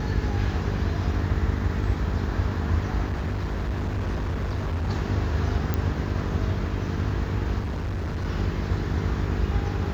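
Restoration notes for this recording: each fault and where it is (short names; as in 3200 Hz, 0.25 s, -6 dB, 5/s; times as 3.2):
buzz 50 Hz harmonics 9 -30 dBFS
3.08–4.89 clipped -23.5 dBFS
5.74 pop -12 dBFS
7.59–8.26 clipped -25.5 dBFS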